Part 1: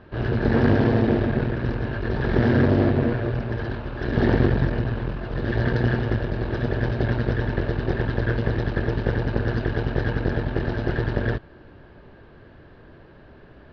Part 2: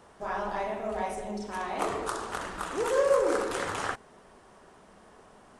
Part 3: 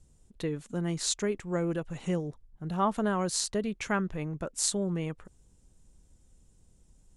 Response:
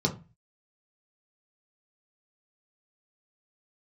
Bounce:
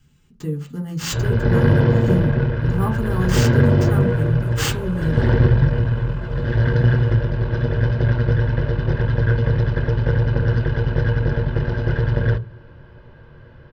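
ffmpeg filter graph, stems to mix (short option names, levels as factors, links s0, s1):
-filter_complex "[0:a]aecho=1:1:2:0.5,adelay=1000,volume=1.12,asplit=2[s0][s1];[s1]volume=0.106[s2];[1:a]adelay=1850,volume=0.133[s3];[2:a]equalizer=f=9000:t=o:w=0.82:g=13,acrusher=samples=4:mix=1:aa=0.000001,volume=0.708,asplit=3[s4][s5][s6];[s5]volume=0.376[s7];[s6]apad=whole_len=328380[s8];[s3][s8]sidechaingate=range=0.0224:threshold=0.00178:ratio=16:detection=peak[s9];[3:a]atrim=start_sample=2205[s10];[s2][s7]amix=inputs=2:normalize=0[s11];[s11][s10]afir=irnorm=-1:irlink=0[s12];[s0][s9][s4][s12]amix=inputs=4:normalize=0"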